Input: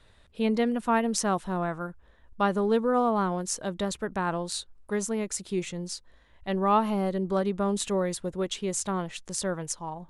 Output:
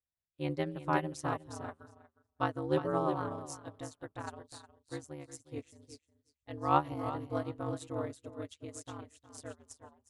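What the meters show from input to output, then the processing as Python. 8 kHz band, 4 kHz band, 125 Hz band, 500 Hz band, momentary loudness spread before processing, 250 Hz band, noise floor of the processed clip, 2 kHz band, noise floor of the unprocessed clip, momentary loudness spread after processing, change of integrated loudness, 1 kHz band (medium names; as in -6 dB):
-17.5 dB, -14.0 dB, -5.5 dB, -9.5 dB, 10 LU, -11.0 dB, under -85 dBFS, -8.0 dB, -58 dBFS, 20 LU, -8.5 dB, -7.0 dB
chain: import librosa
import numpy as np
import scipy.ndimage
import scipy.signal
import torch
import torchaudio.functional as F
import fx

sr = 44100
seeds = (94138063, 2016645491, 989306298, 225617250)

p1 = x * np.sin(2.0 * np.pi * 74.0 * np.arange(len(x)) / sr)
p2 = p1 + fx.echo_feedback(p1, sr, ms=361, feedback_pct=24, wet_db=-6.0, dry=0)
y = fx.upward_expand(p2, sr, threshold_db=-49.0, expansion=2.5)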